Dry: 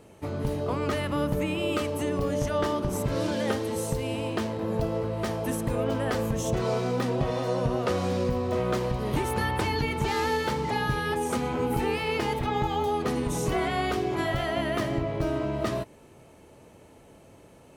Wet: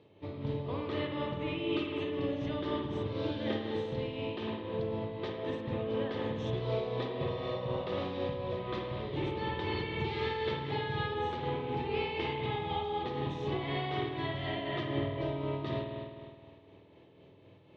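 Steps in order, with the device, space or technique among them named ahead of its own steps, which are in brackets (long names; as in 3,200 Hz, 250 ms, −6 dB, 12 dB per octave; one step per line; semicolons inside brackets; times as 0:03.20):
combo amplifier with spring reverb and tremolo (spring reverb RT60 1.9 s, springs 50 ms, chirp 65 ms, DRR −2 dB; amplitude tremolo 4 Hz, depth 38%; loudspeaker in its box 99–3,900 Hz, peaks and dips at 99 Hz +6 dB, 230 Hz −6 dB, 340 Hz +4 dB, 710 Hz −5 dB, 1,400 Hz −10 dB, 3,600 Hz +9 dB)
level −8 dB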